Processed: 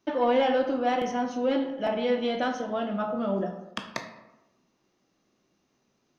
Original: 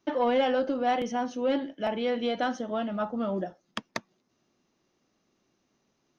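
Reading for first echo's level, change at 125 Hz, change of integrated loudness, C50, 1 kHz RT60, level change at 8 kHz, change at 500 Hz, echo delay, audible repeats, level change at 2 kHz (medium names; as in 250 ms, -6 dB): no echo, +2.5 dB, +1.5 dB, 7.5 dB, 1.0 s, no reading, +2.0 dB, no echo, no echo, +1.5 dB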